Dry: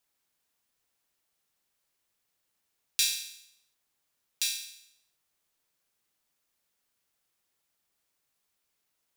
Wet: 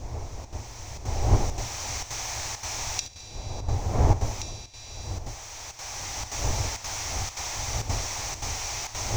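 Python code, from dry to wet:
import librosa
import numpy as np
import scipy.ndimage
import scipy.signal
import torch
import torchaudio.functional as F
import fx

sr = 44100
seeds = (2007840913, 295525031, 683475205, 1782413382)

p1 = x + 0.5 * 10.0 ** (-25.5 / 20.0) * np.sign(x)
p2 = fx.recorder_agc(p1, sr, target_db=-12.0, rise_db_per_s=10.0, max_gain_db=30)
p3 = fx.dmg_wind(p2, sr, seeds[0], corner_hz=360.0, level_db=-16.0)
p4 = fx.curve_eq(p3, sr, hz=(110.0, 160.0, 490.0, 810.0, 1500.0, 3000.0, 5800.0, 10000.0), db=(0, -20, -13, -2, -14, -4, 1, -29))
p5 = p4 + fx.echo_thinned(p4, sr, ms=71, feedback_pct=68, hz=420.0, wet_db=-16.5, dry=0)
p6 = fx.chopper(p5, sr, hz=1.9, depth_pct=65, duty_pct=85)
p7 = fx.band_shelf(p6, sr, hz=3800.0, db=-10.0, octaves=1.1)
y = p7 * librosa.db_to_amplitude(-8.5)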